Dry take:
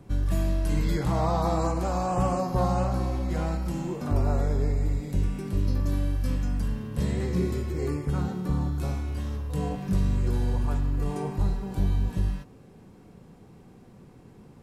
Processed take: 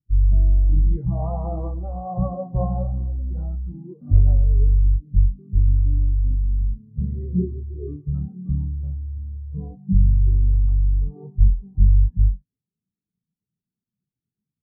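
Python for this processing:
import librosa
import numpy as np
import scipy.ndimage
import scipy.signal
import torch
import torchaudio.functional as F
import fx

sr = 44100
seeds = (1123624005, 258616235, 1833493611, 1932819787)

y = fx.spectral_expand(x, sr, expansion=2.5)
y = y * 10.0 ** (8.5 / 20.0)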